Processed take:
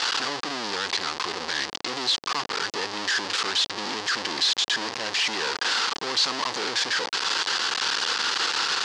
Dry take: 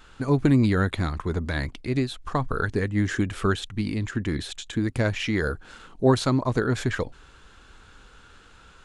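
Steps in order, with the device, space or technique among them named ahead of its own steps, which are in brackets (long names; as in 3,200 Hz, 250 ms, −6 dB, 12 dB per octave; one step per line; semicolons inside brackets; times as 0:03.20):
home computer beeper (sign of each sample alone; loudspeaker in its box 620–6,000 Hz, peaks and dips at 630 Hz −10 dB, 1,400 Hz −5 dB, 2,300 Hz −5 dB, 4,700 Hz +6 dB)
level +5 dB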